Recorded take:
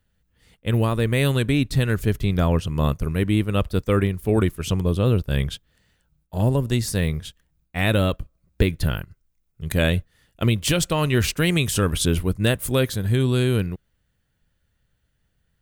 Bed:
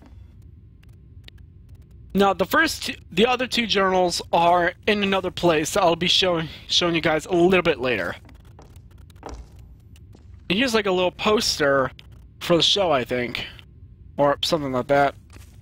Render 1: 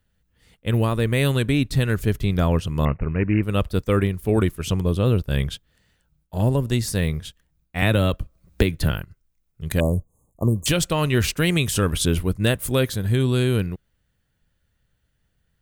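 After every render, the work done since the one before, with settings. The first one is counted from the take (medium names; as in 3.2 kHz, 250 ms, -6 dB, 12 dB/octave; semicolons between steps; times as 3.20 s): 2.85–3.43 s: careless resampling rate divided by 8×, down none, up filtered; 7.82–8.91 s: three bands compressed up and down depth 70%; 9.80–10.66 s: brick-wall FIR band-stop 1.2–6.3 kHz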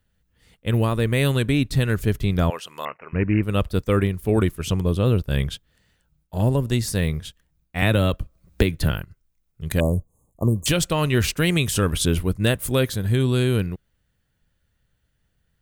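2.50–3.13 s: high-pass 760 Hz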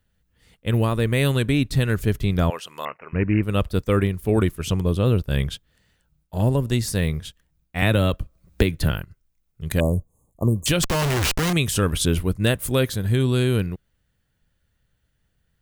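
10.83–11.53 s: Schmitt trigger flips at -31 dBFS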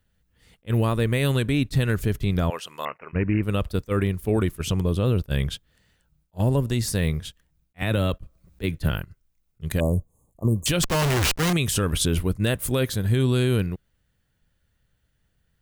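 peak limiter -11.5 dBFS, peak gain reduction 8 dB; attacks held to a fixed rise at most 550 dB/s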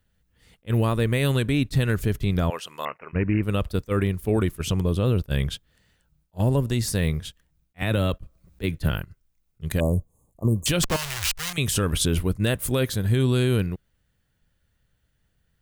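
10.96–11.58 s: amplifier tone stack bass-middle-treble 10-0-10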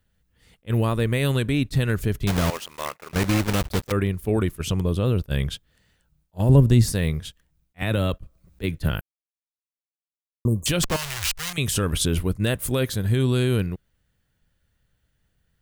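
2.27–3.94 s: block-companded coder 3-bit; 6.49–6.92 s: bass shelf 380 Hz +10.5 dB; 9.01–10.45 s: mute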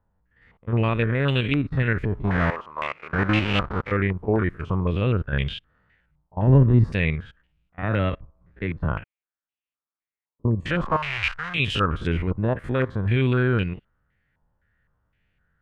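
spectrogram pixelated in time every 50 ms; step-sequenced low-pass 3.9 Hz 950–2800 Hz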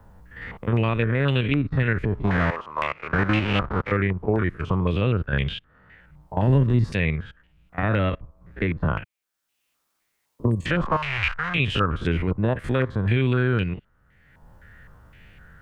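three bands compressed up and down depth 70%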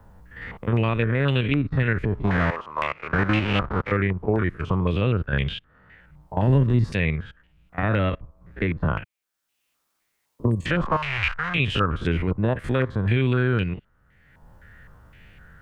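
no audible change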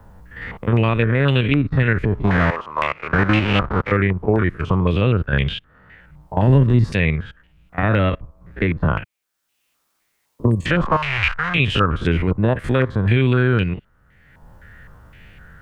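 trim +5 dB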